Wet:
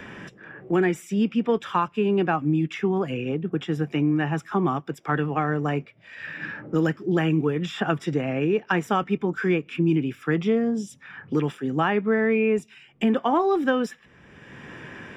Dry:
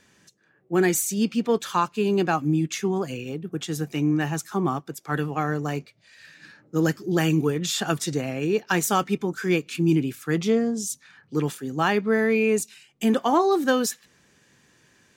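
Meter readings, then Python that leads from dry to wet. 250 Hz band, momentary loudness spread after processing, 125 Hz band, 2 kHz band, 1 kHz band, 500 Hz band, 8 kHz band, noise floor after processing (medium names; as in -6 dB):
+0.5 dB, 12 LU, +0.5 dB, 0.0 dB, 0.0 dB, 0.0 dB, under -15 dB, -55 dBFS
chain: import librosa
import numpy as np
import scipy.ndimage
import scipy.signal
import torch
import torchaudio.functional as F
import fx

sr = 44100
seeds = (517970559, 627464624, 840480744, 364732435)

y = scipy.signal.savgol_filter(x, 25, 4, mode='constant')
y = fx.band_squash(y, sr, depth_pct=70)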